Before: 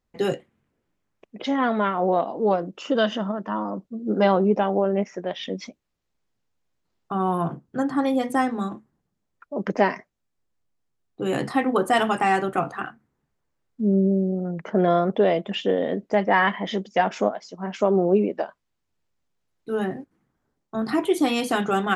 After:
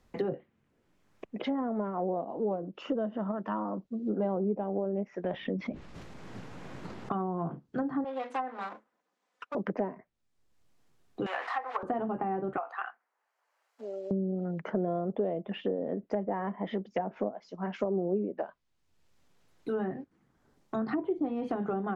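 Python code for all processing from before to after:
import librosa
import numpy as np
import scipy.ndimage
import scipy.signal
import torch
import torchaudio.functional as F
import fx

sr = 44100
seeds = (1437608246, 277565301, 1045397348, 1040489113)

y = fx.chain(x, sr, fx.low_shelf(hz=190.0, db=9.5),
    fx.env_flatten(amount_pct=70), at=(5.24, 7.12))
y = fx.chain(y, sr, fx.lower_of_two(delay_ms=4.0),
    fx.bandpass_edges(low_hz=610.0, high_hz=7600.0),
    fx.high_shelf(hz=5100.0, db=5.5), at=(8.04, 9.55))
y = fx.chain(y, sr, fx.delta_mod(bps=64000, step_db=-31.0),
    fx.leveller(passes=2),
    fx.highpass(hz=780.0, slope=24), at=(11.26, 11.83))
y = fx.chain(y, sr, fx.highpass(hz=650.0, slope=24),
    fx.notch(hz=3600.0, q=15.0), at=(12.57, 14.11))
y = fx.env_lowpass_down(y, sr, base_hz=630.0, full_db=-18.5)
y = fx.high_shelf(y, sr, hz=6300.0, db=-5.0)
y = fx.band_squash(y, sr, depth_pct=70)
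y = F.gain(torch.from_numpy(y), -8.0).numpy()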